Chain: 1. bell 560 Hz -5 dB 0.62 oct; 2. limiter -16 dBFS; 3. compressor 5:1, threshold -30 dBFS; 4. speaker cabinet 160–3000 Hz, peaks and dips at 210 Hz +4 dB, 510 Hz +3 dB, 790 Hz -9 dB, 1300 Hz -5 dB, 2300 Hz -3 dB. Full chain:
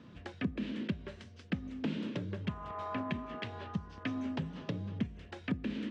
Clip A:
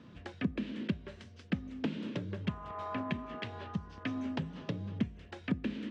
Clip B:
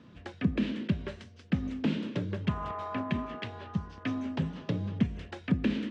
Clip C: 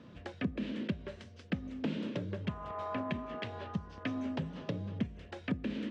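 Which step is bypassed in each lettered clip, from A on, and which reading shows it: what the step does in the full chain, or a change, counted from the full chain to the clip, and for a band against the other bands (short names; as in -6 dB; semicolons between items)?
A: 2, crest factor change +1.5 dB; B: 3, momentary loudness spread change +3 LU; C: 1, 500 Hz band +2.5 dB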